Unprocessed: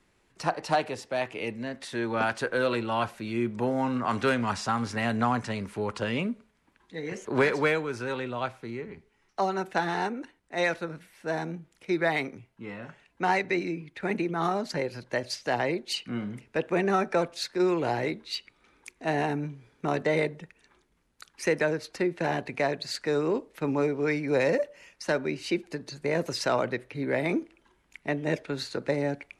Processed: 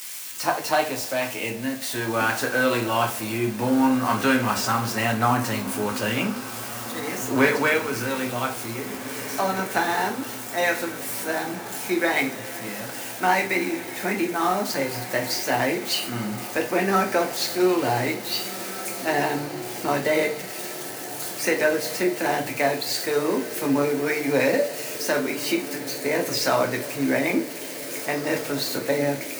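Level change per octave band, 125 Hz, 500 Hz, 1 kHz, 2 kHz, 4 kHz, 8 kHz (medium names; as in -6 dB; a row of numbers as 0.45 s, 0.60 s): +2.5 dB, +3.5 dB, +5.5 dB, +6.5 dB, +8.0 dB, +14.5 dB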